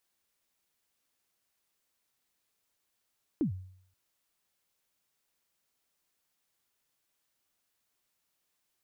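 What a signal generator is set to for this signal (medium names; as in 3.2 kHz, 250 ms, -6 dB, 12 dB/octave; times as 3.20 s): kick drum length 0.53 s, from 350 Hz, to 93 Hz, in 107 ms, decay 0.63 s, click off, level -23 dB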